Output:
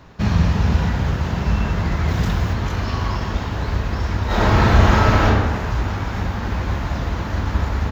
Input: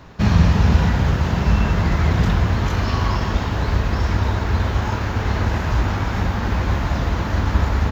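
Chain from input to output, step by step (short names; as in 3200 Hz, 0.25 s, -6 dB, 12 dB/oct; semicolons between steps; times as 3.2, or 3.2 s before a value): 2.08–2.53 high shelf 5800 Hz +8 dB; 4.26–5.25 reverb throw, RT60 1.4 s, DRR -11.5 dB; gain -2.5 dB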